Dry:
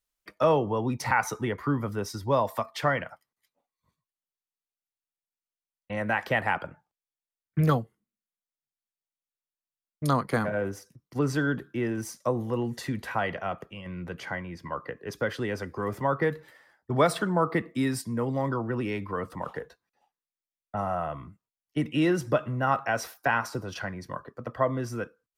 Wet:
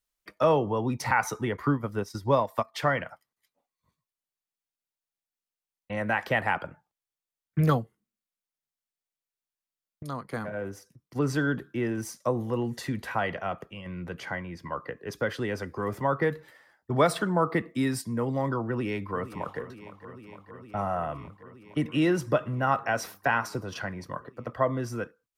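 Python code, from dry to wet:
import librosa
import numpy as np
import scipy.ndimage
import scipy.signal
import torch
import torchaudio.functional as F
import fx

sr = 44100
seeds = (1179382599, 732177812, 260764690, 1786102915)

y = fx.transient(x, sr, attack_db=3, sustain_db=-9, at=(1.56, 2.74))
y = fx.echo_throw(y, sr, start_s=18.67, length_s=0.92, ms=460, feedback_pct=85, wet_db=-14.5)
y = fx.edit(y, sr, fx.fade_in_from(start_s=10.03, length_s=1.29, floor_db=-13.0), tone=tone)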